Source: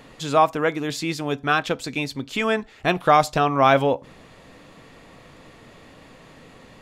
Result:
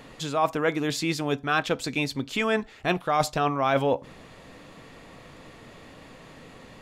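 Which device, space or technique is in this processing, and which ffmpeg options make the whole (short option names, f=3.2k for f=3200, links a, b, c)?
compression on the reversed sound: -af "areverse,acompressor=threshold=-19dB:ratio=12,areverse"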